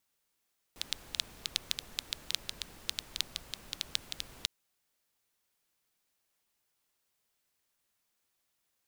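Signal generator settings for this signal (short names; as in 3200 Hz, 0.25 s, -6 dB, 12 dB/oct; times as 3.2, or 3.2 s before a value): rain from filtered ticks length 3.70 s, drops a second 7.1, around 3700 Hz, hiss -12 dB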